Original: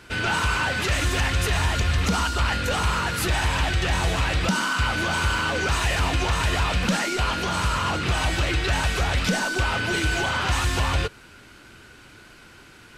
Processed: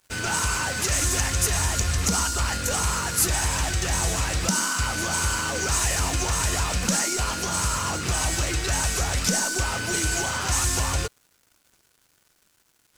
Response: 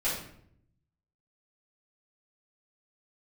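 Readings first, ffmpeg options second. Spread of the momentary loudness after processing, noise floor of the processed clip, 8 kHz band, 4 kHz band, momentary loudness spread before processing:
3 LU, -66 dBFS, +10.0 dB, -1.5 dB, 1 LU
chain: -af "highshelf=f=4.7k:t=q:w=1.5:g=11,aeval=exprs='sgn(val(0))*max(abs(val(0))-0.00891,0)':c=same,volume=-2dB"

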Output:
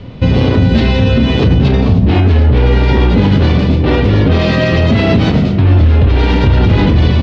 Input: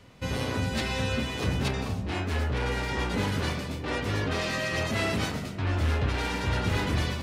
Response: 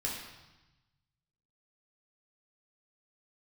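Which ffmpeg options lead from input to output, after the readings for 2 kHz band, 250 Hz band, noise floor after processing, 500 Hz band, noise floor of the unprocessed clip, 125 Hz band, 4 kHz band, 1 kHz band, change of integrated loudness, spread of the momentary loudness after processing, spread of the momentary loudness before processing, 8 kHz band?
+10.5 dB, +20.5 dB, -13 dBFS, +17.5 dB, -35 dBFS, +20.5 dB, +12.0 dB, +12.5 dB, +18.5 dB, 2 LU, 4 LU, n/a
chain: -filter_complex "[0:a]lowpass=f=3.7k:w=0.5412,lowpass=f=3.7k:w=1.3066,equalizer=f=1.6k:w=0.42:g=-13.5,asplit=2[a][b];[b]adelay=35,volume=-11dB[c];[a][c]amix=inputs=2:normalize=0,alimiter=level_in=27dB:limit=-1dB:release=50:level=0:latency=1,volume=-1dB"

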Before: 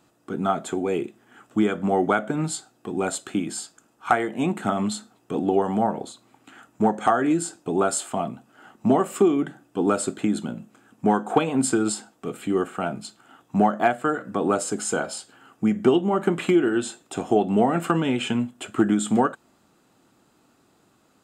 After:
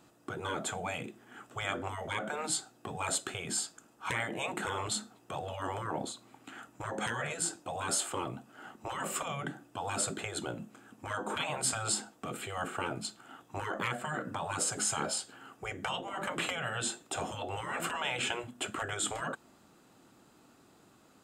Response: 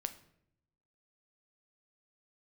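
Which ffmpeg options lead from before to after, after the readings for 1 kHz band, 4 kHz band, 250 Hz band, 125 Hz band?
-11.5 dB, -1.0 dB, -20.5 dB, -11.5 dB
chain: -af "afftfilt=real='re*lt(hypot(re,im),0.141)':imag='im*lt(hypot(re,im),0.141)':win_size=1024:overlap=0.75"

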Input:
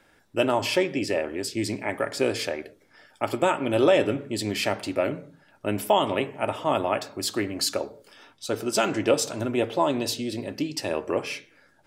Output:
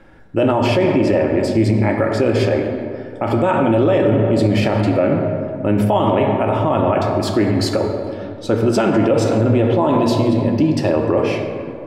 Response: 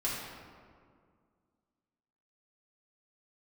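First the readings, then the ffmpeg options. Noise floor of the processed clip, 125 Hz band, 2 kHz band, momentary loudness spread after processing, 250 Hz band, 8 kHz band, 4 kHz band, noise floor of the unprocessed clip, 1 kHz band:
-31 dBFS, +18.0 dB, +4.5 dB, 7 LU, +12.5 dB, -3.5 dB, +1.0 dB, -61 dBFS, +7.5 dB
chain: -filter_complex "[0:a]lowpass=f=1.3k:p=1,lowshelf=f=190:g=9,asplit=2[a][b];[1:a]atrim=start_sample=2205,asetrate=36603,aresample=44100[c];[b][c]afir=irnorm=-1:irlink=0,volume=-7dB[d];[a][d]amix=inputs=2:normalize=0,alimiter=level_in=14dB:limit=-1dB:release=50:level=0:latency=1,volume=-5.5dB"

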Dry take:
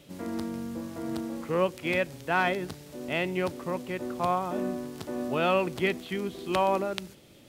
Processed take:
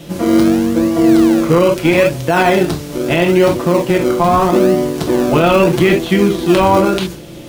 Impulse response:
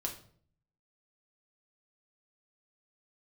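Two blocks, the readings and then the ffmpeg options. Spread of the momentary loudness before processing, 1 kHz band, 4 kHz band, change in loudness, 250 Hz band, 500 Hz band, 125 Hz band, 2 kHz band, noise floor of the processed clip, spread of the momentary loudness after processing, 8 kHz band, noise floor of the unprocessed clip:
10 LU, +14.5 dB, +15.0 dB, +17.5 dB, +20.5 dB, +17.5 dB, +20.0 dB, +12.5 dB, -31 dBFS, 5 LU, +19.5 dB, -54 dBFS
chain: -filter_complex "[1:a]atrim=start_sample=2205,afade=t=out:st=0.13:d=0.01,atrim=end_sample=6174[a];[0:a][a]afir=irnorm=-1:irlink=0,asplit=2[b][c];[c]acrusher=samples=34:mix=1:aa=0.000001:lfo=1:lforange=34:lforate=0.78,volume=-10dB[d];[b][d]amix=inputs=2:normalize=0,alimiter=level_in=18.5dB:limit=-1dB:release=50:level=0:latency=1,volume=-1dB"

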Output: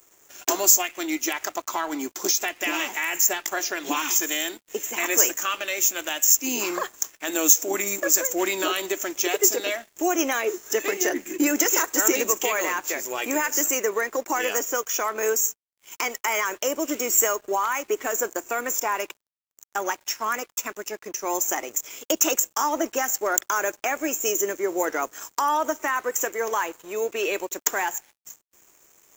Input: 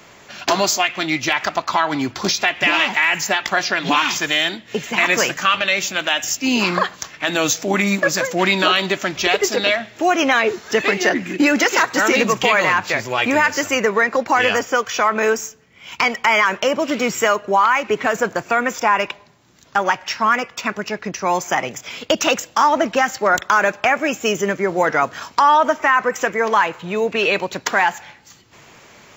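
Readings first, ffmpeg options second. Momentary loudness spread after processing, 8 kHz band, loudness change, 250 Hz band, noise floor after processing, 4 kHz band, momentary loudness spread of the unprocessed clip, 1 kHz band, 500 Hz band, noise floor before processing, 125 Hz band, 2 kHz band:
10 LU, +5.0 dB, -5.5 dB, -7.5 dB, -70 dBFS, -10.0 dB, 6 LU, -10.0 dB, -7.0 dB, -47 dBFS, under -20 dB, -11.0 dB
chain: -af "lowshelf=f=220:t=q:w=3:g=-13.5,aexciter=amount=12.2:drive=7:freq=6.6k,aeval=exprs='sgn(val(0))*max(abs(val(0))-0.0158,0)':c=same,volume=-10.5dB"

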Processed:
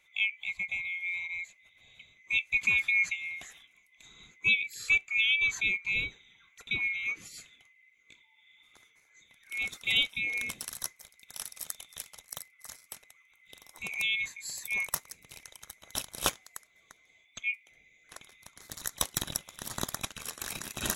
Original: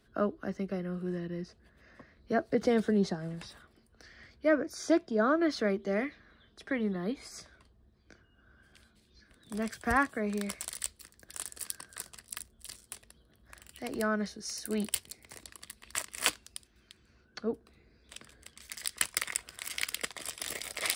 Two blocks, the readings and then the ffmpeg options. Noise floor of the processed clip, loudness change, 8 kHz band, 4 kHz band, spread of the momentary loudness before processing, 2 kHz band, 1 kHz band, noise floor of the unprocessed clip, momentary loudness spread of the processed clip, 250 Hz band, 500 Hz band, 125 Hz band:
-66 dBFS, +3.0 dB, 0.0 dB, +6.0 dB, 19 LU, +9.0 dB, -8.0 dB, -66 dBFS, 22 LU, -17.5 dB, -17.5 dB, -7.5 dB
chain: -af "afftfilt=real='real(if(lt(b,920),b+92*(1-2*mod(floor(b/92),2)),b),0)':imag='imag(if(lt(b,920),b+92*(1-2*mod(floor(b/92),2)),b),0)':win_size=2048:overlap=0.75"

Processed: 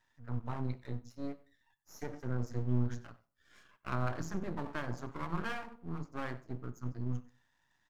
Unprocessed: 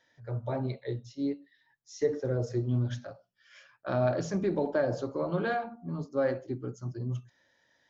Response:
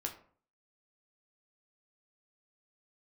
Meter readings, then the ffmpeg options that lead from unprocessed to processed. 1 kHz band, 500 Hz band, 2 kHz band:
-5.0 dB, -14.5 dB, -4.5 dB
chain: -filter_complex "[0:a]firequalizer=gain_entry='entry(110,0);entry(540,-19);entry(1000,3);entry(1500,-3);entry(5300,-25)':delay=0.05:min_phase=1,aexciter=amount=9.3:drive=7.7:freq=5k,aeval=exprs='max(val(0),0)':c=same,asplit=2[a][b];[b]adelay=93.29,volume=-20dB,highshelf=f=4k:g=-2.1[c];[a][c]amix=inputs=2:normalize=0,asplit=2[d][e];[1:a]atrim=start_sample=2205,afade=t=out:st=0.3:d=0.01,atrim=end_sample=13671[f];[e][f]afir=irnorm=-1:irlink=0,volume=-12dB[g];[d][g]amix=inputs=2:normalize=0,volume=1dB"

